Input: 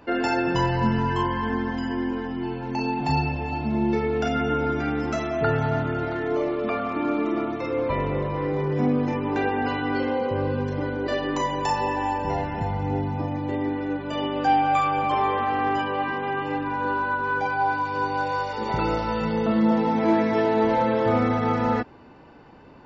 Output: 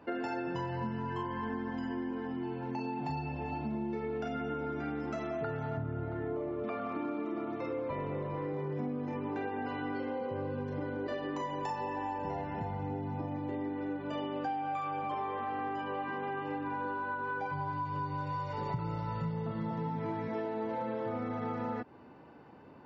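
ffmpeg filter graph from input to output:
-filter_complex "[0:a]asettb=1/sr,asplit=3[a][b][c];[a]atrim=end=5.774[d];[b]atrim=start=5.77:end=6.64,asetpts=PTS-STARTPTS,afade=t=in:d=0.004:c=qsin,afade=t=out:st=0.866:d=0.004:c=qsin,lowpass=f=1.6k:p=1,equalizer=f=83:w=1:g=14.5[e];[c]atrim=start=6.636[f];[d][e]acrossfade=d=0.004:c1=hsin:c2=qsin[g];[g][f]acrossfade=d=0.004:c1=qsin:c2=hsin,asettb=1/sr,asplit=3[h][i][j];[h]atrim=end=17.514[k];[i]atrim=start=17.51:end=20.28,asetpts=PTS-STARTPTS,afade=t=in:d=0.004:c=qsin,afade=t=out:st=2.766:d=0.004:c=qsin,lowshelf=f=200:t=q:w=1.5:g=10,aecho=1:1:7:0.65,atrim=end_sample=122157[l];[j]atrim=start=20.276[m];[k][l]acrossfade=d=0.004:c1=hsin:c2=qsin[n];[n][m]acrossfade=d=0.004:c1=qsin:c2=hsin,highpass=95,highshelf=f=3k:g=-9.5,acompressor=threshold=-28dB:ratio=6,volume=-5dB"

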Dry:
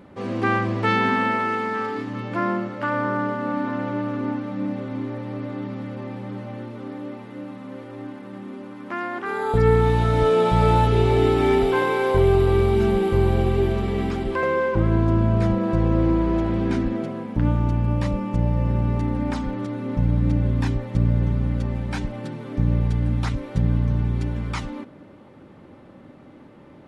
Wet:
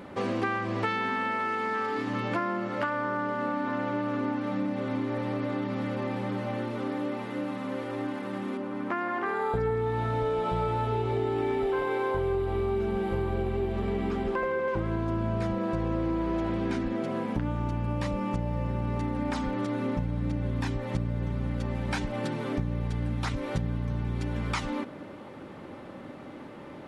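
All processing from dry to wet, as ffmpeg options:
-filter_complex "[0:a]asettb=1/sr,asplit=3[a][b][c];[a]atrim=end=8.574[d];[b]atrim=start=8.57:end=14.68,asetpts=PTS-STARTPTS,afade=t=in:d=0.004:c=qsin,afade=t=out:st=6.106:d=0.004:c=qsin,highshelf=f=2.5k:g=-10,aecho=1:1:163:0.422,atrim=end_sample=269451[e];[c]atrim=start=14.676[f];[d][e]acrossfade=d=0.004:c1=hsin:c2=qsin[g];[g][f]acrossfade=d=0.004:c1=qsin:c2=hsin,lowshelf=f=290:g=-7.5,acompressor=threshold=-33dB:ratio=6,volume=6.5dB"

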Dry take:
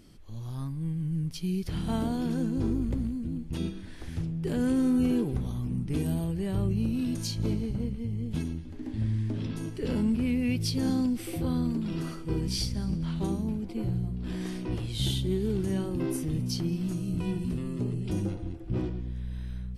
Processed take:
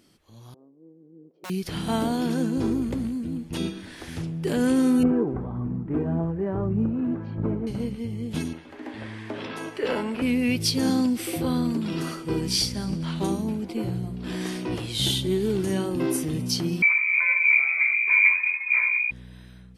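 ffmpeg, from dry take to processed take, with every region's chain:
-filter_complex "[0:a]asettb=1/sr,asplit=3[a][b][c];[a]atrim=end=0.544[d];[b]atrim=start=0.54:end=1.5,asetpts=PTS-STARTPTS,afade=t=in:d=0.004:c=qsin,afade=t=out:st=0.956:d=0.004:c=qsin,asuperpass=centerf=430:order=4:qfactor=1.9,aeval=exprs='(mod(100*val(0)+1,2)-1)/100':c=same[e];[c]atrim=start=1.496[f];[d][e]acrossfade=d=0.004:c1=hsin:c2=qsin[g];[g][f]acrossfade=d=0.004:c1=qsin:c2=hsin,asettb=1/sr,asplit=3[h][i][j];[h]atrim=end=5.034[k];[i]atrim=start=5.03:end=7.67,asetpts=PTS-STARTPTS,afade=t=in:d=0.004:c=qsin,afade=t=out:st=2.636:d=0.004:c=qsin,lowpass=f=1.5k:w=0.5412,lowpass=f=1.5k:w=1.3066,aphaser=in_gain=1:out_gain=1:delay=3.4:decay=0.28:speed=1.7:type=triangular[l];[j]atrim=start=7.666[m];[k][l]acrossfade=d=0.004:c1=hsin:c2=qsin[n];[n][m]acrossfade=d=0.004:c1=qsin:c2=hsin,asettb=1/sr,asplit=3[o][p][q];[o]atrim=end=8.534[r];[p]atrim=start=8.53:end=10.22,asetpts=PTS-STARTPTS,afade=t=in:d=0.004:c=qsin,afade=t=out:st=1.686:d=0.004:c=qsin,acontrast=59,acrossover=split=440 2800:gain=0.126 1 0.224[s][t][u];[s][t][u]amix=inputs=3:normalize=0[v];[q]atrim=start=10.216[w];[r][v]acrossfade=d=0.004:c1=hsin:c2=qsin[x];[x][w]acrossfade=d=0.004:c1=qsin:c2=hsin,asettb=1/sr,asplit=3[y][z][aa];[y]atrim=end=16.824[ab];[z]atrim=start=16.82:end=19.11,asetpts=PTS-STARTPTS,afade=t=in:d=0.004:c=qsin,afade=t=out:st=2.286:d=0.004:c=qsin,aphaser=in_gain=1:out_gain=1:delay=3.1:decay=0.36:speed=1.4:type=triangular,lowpass=f=2.1k:t=q:w=0.5098,lowpass=f=2.1k:t=q:w=0.6013,lowpass=f=2.1k:t=q:w=0.9,lowpass=f=2.1k:t=q:w=2.563,afreqshift=-2500,equalizer=f=1k:w=4:g=11.5[ac];[aa]atrim=start=19.106[ad];[ab][ac]acrossfade=d=0.004:c1=hsin:c2=qsin[ae];[ae][ad]acrossfade=d=0.004:c1=qsin:c2=hsin,highpass=f=350:p=1,dynaudnorm=f=270:g=9:m=9dB"

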